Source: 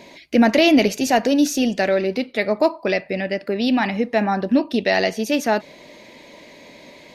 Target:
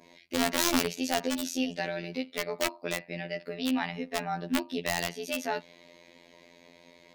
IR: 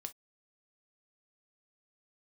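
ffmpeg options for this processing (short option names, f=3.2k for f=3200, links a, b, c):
-af "adynamicequalizer=threshold=0.0158:dfrequency=3300:dqfactor=1.3:tfrequency=3300:tqfactor=1.3:attack=5:release=100:ratio=0.375:range=2.5:mode=boostabove:tftype=bell,aeval=exprs='(mod(2.24*val(0)+1,2)-1)/2.24':c=same,afftfilt=real='hypot(re,im)*cos(PI*b)':imag='0':win_size=2048:overlap=0.75,volume=-9dB"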